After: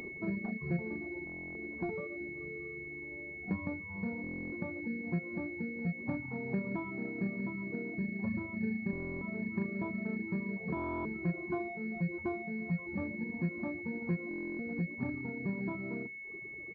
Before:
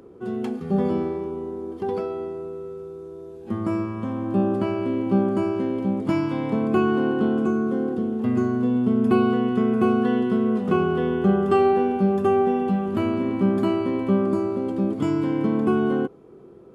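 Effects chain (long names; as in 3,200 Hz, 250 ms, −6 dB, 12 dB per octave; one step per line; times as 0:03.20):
far-end echo of a speakerphone 310 ms, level −27 dB
downward compressor 4 to 1, threshold −33 dBFS, peak gain reduction 16 dB
parametric band 360 Hz −4 dB 0.25 octaves
upward compression, threshold −49 dBFS
reverb reduction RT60 1.7 s
mains-hum notches 60/120/180/240/300/360/420/480 Hz
on a send at −9 dB: convolution reverb, pre-delay 5 ms
on the sum: pitch shifter −2 semitones
reverb reduction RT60 0.52 s
buffer that repeats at 0:01.25/0:04.22/0:08.91/0:10.75/0:14.29, samples 1,024, times 12
switching amplifier with a slow clock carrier 2,200 Hz
level +1.5 dB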